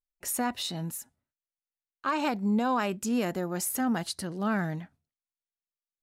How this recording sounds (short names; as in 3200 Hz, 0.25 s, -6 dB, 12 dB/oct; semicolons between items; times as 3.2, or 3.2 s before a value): noise floor -96 dBFS; spectral tilt -4.5 dB/oct